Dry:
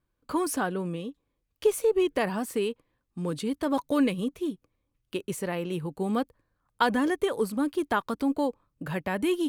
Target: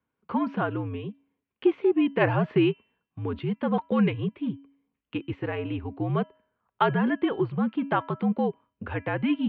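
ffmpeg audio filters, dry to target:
ffmpeg -i in.wav -filter_complex "[0:a]asplit=3[link_01][link_02][link_03];[link_01]afade=type=out:start_time=2.2:duration=0.02[link_04];[link_02]acontrast=36,afade=type=in:start_time=2.2:duration=0.02,afade=type=out:start_time=2.7:duration=0.02[link_05];[link_03]afade=type=in:start_time=2.7:duration=0.02[link_06];[link_04][link_05][link_06]amix=inputs=3:normalize=0,bandreject=frequency=347.5:width_type=h:width=4,bandreject=frequency=695:width_type=h:width=4,bandreject=frequency=1042.5:width_type=h:width=4,bandreject=frequency=1390:width_type=h:width=4,bandreject=frequency=1737.5:width_type=h:width=4,bandreject=frequency=2085:width_type=h:width=4,bandreject=frequency=2432.5:width_type=h:width=4,bandreject=frequency=2780:width_type=h:width=4,bandreject=frequency=3127.5:width_type=h:width=4,highpass=frequency=170:width_type=q:width=0.5412,highpass=frequency=170:width_type=q:width=1.307,lowpass=frequency=3100:width_type=q:width=0.5176,lowpass=frequency=3100:width_type=q:width=0.7071,lowpass=frequency=3100:width_type=q:width=1.932,afreqshift=-70,volume=1.5dB" out.wav

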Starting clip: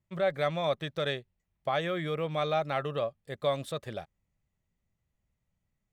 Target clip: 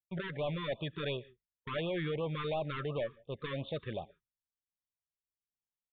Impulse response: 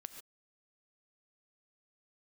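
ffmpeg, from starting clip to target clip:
-filter_complex "[0:a]agate=range=-33dB:threshold=-50dB:ratio=3:detection=peak,asoftclip=type=tanh:threshold=-32dB,asplit=2[link_01][link_02];[1:a]atrim=start_sample=2205[link_03];[link_02][link_03]afir=irnorm=-1:irlink=0,volume=-8.5dB[link_04];[link_01][link_04]amix=inputs=2:normalize=0,aresample=8000,aresample=44100,afftfilt=real='re*(1-between(b*sr/1024,640*pow(1800/640,0.5+0.5*sin(2*PI*2.8*pts/sr))/1.41,640*pow(1800/640,0.5+0.5*sin(2*PI*2.8*pts/sr))*1.41))':imag='im*(1-between(b*sr/1024,640*pow(1800/640,0.5+0.5*sin(2*PI*2.8*pts/sr))/1.41,640*pow(1800/640,0.5+0.5*sin(2*PI*2.8*pts/sr))*1.41))':win_size=1024:overlap=0.75"

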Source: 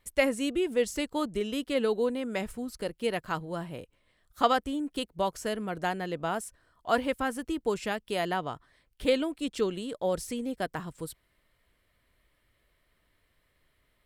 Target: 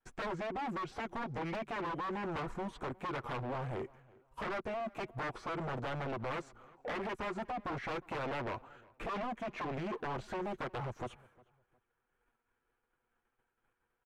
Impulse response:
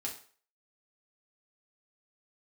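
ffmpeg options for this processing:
-filter_complex "[0:a]agate=range=-33dB:threshold=-58dB:ratio=3:detection=peak,acrossover=split=3900[link_01][link_02];[link_02]acompressor=threshold=-58dB:ratio=4:attack=1:release=60[link_03];[link_01][link_03]amix=inputs=2:normalize=0,equalizer=frequency=6100:width_type=o:width=2.9:gain=-10,aecho=1:1:6.4:0.59,alimiter=limit=-24dB:level=0:latency=1:release=75,acompressor=threshold=-40dB:ratio=1.5,aeval=exprs='0.0133*(abs(mod(val(0)/0.0133+3,4)-2)-1)':channel_layout=same,asetrate=34006,aresample=44100,atempo=1.29684,asplit=2[link_04][link_05];[link_05]highpass=frequency=720:poles=1,volume=14dB,asoftclip=type=tanh:threshold=-37.5dB[link_06];[link_04][link_06]amix=inputs=2:normalize=0,lowpass=frequency=2100:poles=1,volume=-6dB,asplit=2[link_07][link_08];[link_08]adelay=358,lowpass=frequency=2400:poles=1,volume=-23.5dB,asplit=2[link_09][link_10];[link_10]adelay=358,lowpass=frequency=2400:poles=1,volume=0.29[link_11];[link_09][link_11]amix=inputs=2:normalize=0[link_12];[link_07][link_12]amix=inputs=2:normalize=0,volume=5.5dB"

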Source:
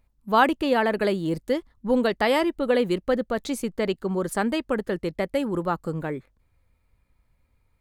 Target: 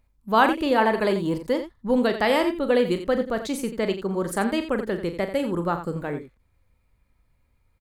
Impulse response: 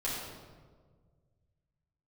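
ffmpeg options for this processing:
-filter_complex "[0:a]asettb=1/sr,asplit=3[link_01][link_02][link_03];[link_01]atrim=end=0.784[link_04];[link_02]atrim=start=0.78:end=1.57,asetpts=PTS-STARTPTS,afade=type=in:duration=0.004:curve=qsin,afade=type=out:start_time=0.786:duration=0.004:curve=qsin,equalizer=frequency=990:width_type=o:width=0.29:gain=11[link_05];[link_03]atrim=start=1.566[link_06];[link_04][link_05]acrossfade=duration=0.004:curve1=hsin:curve2=qsin[link_07];[link_07][link_06]acrossfade=duration=0.004:curve1=qsin:curve2=hsin,asplit=2[link_08][link_09];[link_09]aecho=0:1:40.82|87.46:0.316|0.282[link_10];[link_08][link_10]amix=inputs=2:normalize=0"

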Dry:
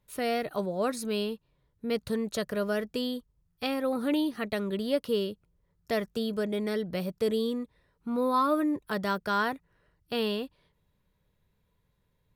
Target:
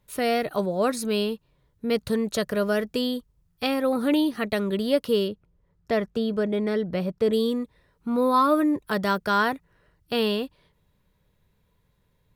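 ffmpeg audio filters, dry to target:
ffmpeg -i in.wav -filter_complex "[0:a]asettb=1/sr,asplit=3[link_01][link_02][link_03];[link_01]atrim=end=5.284[link_04];[link_02]atrim=start=5.28:end=7.33,asetpts=PTS-STARTPTS,afade=type=in:duration=0.004:curve=qsin,afade=type=out:start_time=2.046:duration=0.004:curve=qsin,lowpass=frequency=2300:poles=1[link_05];[link_03]atrim=start=7.326[link_06];[link_04][link_05]acrossfade=duration=0.004:curve1=hsin:curve2=qsin[link_07];[link_07][link_06]acrossfade=duration=0.004:curve1=qsin:curve2=hsin,volume=5.5dB" out.wav

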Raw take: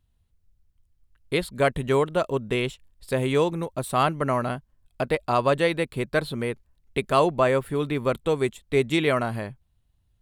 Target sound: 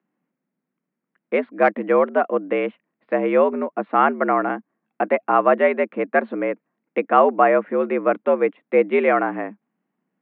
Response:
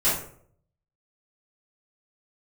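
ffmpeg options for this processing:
-filter_complex "[0:a]highpass=frequency=150:width_type=q:width=0.5412,highpass=frequency=150:width_type=q:width=1.307,lowpass=frequency=2200:width_type=q:width=0.5176,lowpass=frequency=2200:width_type=q:width=0.7071,lowpass=frequency=2200:width_type=q:width=1.932,afreqshift=76,asettb=1/sr,asplit=3[link_01][link_02][link_03];[link_01]atrim=end=1.354[link_04];[link_02]atrim=start=1.35:end=3.24,asetpts=PTS-STARTPTS,afade=type=in:duration=0.004:curve=qsin,afade=type=out:start_time=1.886:duration=0.004:curve=qsin,aeval=exprs='0.335*(cos(1*acos(clip(val(0)/0.335,-1,1)))-cos(1*PI/2))+0.00944*(cos(3*acos(clip(val(0)/0.335,-1,1)))-cos(3*PI/2))':channel_layout=same[link_05];[link_03]atrim=start=3.236[link_06];[link_04][link_05]acrossfade=duration=0.004:curve1=hsin:curve2=qsin[link_07];[link_07][link_06]acrossfade=duration=0.004:curve1=qsin:curve2=hsin,volume=5.5dB"

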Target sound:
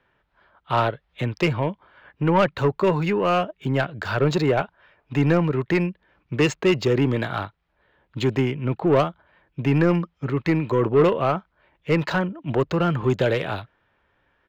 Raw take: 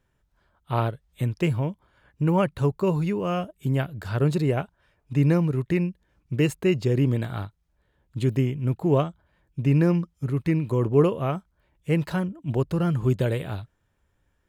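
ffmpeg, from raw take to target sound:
ffmpeg -i in.wav -filter_complex "[0:a]aresample=16000,aresample=44100,asplit=2[link_01][link_02];[link_02]highpass=frequency=720:poles=1,volume=18dB,asoftclip=type=tanh:threshold=-8.5dB[link_03];[link_01][link_03]amix=inputs=2:normalize=0,lowpass=frequency=5400:poles=1,volume=-6dB,acrossover=split=240|840|3900[link_04][link_05][link_06][link_07];[link_07]aeval=exprs='sgn(val(0))*max(abs(val(0))-0.00316,0)':channel_layout=same[link_08];[link_04][link_05][link_06][link_08]amix=inputs=4:normalize=0" out.wav

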